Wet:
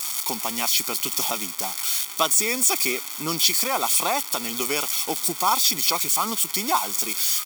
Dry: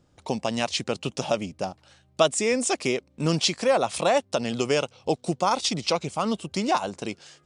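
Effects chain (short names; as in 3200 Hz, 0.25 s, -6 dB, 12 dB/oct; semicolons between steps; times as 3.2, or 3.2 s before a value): switching spikes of -16.5 dBFS; HPF 360 Hz 12 dB/oct; comb 0.9 ms, depth 73%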